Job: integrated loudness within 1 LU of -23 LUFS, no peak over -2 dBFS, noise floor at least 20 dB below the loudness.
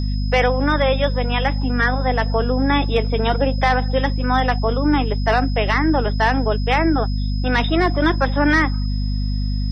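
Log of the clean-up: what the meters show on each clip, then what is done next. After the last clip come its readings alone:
hum 50 Hz; harmonics up to 250 Hz; hum level -18 dBFS; steady tone 5100 Hz; tone level -36 dBFS; loudness -19.0 LUFS; peak -6.0 dBFS; loudness target -23.0 LUFS
-> de-hum 50 Hz, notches 5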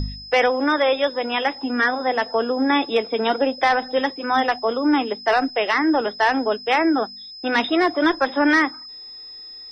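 hum none; steady tone 5100 Hz; tone level -36 dBFS
-> notch 5100 Hz, Q 30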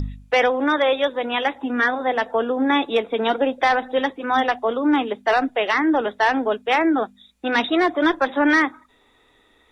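steady tone none; loudness -20.5 LUFS; peak -8.5 dBFS; loudness target -23.0 LUFS
-> gain -2.5 dB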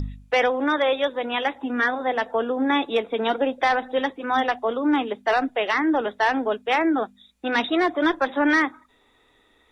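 loudness -23.0 LUFS; peak -11.0 dBFS; noise floor -61 dBFS

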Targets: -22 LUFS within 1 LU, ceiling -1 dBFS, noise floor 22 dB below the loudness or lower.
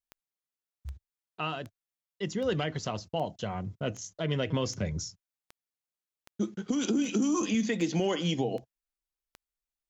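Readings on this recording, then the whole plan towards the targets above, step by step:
clicks 13; loudness -31.5 LUFS; peak -18.5 dBFS; loudness target -22.0 LUFS
-> de-click; gain +9.5 dB

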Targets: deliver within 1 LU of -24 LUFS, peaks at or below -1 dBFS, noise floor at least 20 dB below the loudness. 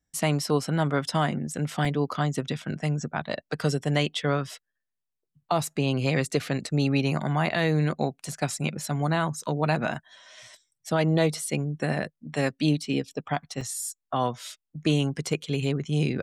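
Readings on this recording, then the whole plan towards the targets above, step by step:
dropouts 3; longest dropout 4.1 ms; loudness -27.5 LUFS; peak -11.0 dBFS; loudness target -24.0 LUFS
-> interpolate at 1.85/9.94/13.61, 4.1 ms; gain +3.5 dB

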